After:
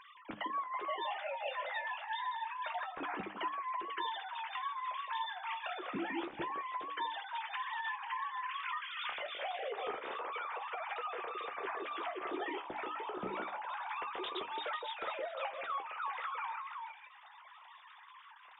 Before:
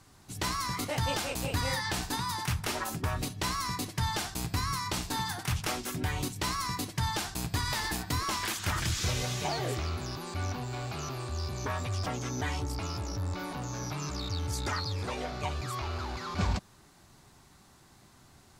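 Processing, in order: sine-wave speech; bell 580 Hz -2 dB; notches 50/100/150/200/250/300 Hz; compressor 6:1, threshold -43 dBFS, peak gain reduction 20 dB; flange 0.27 Hz, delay 7.7 ms, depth 9.5 ms, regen +44%; delay with a stepping band-pass 0.164 s, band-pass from 380 Hz, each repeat 1.4 oct, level 0 dB; mismatched tape noise reduction encoder only; gain +8 dB

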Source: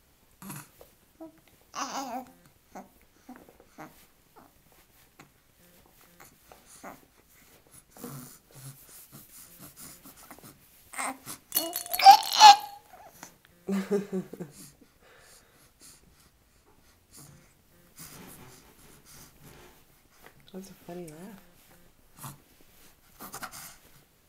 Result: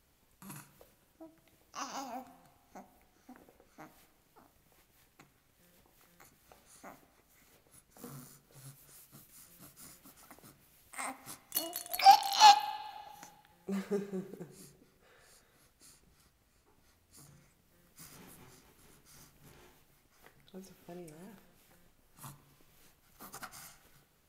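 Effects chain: spring tank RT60 1.7 s, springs 35/58 ms, chirp 25 ms, DRR 14.5 dB; gain -7 dB

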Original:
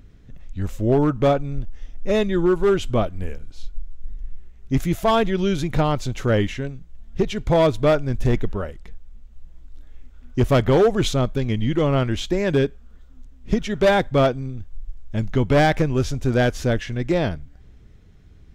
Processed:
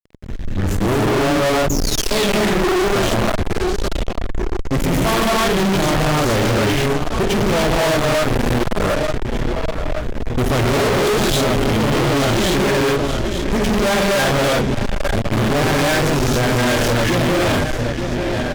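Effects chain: painted sound fall, 1.69–2.26, 1700–7000 Hz -32 dBFS; feedback echo 0.884 s, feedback 46%, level -18 dB; non-linear reverb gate 0.32 s rising, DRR -7 dB; fuzz box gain 32 dB, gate -37 dBFS; gain -2 dB

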